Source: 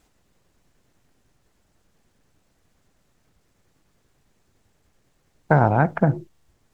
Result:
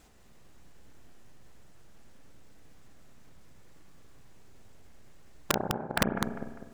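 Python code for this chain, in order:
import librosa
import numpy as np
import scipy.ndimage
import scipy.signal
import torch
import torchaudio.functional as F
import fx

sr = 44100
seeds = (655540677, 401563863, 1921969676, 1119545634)

p1 = fx.gate_flip(x, sr, shuts_db=-10.0, range_db=-33)
p2 = p1 + fx.echo_feedback(p1, sr, ms=200, feedback_pct=39, wet_db=-8.0, dry=0)
p3 = fx.rev_spring(p2, sr, rt60_s=1.1, pass_ms=(31, 48), chirp_ms=80, drr_db=5.5)
p4 = (np.mod(10.0 ** (18.5 / 20.0) * p3 + 1.0, 2.0) - 1.0) / 10.0 ** (18.5 / 20.0)
y = p4 * librosa.db_to_amplitude(4.0)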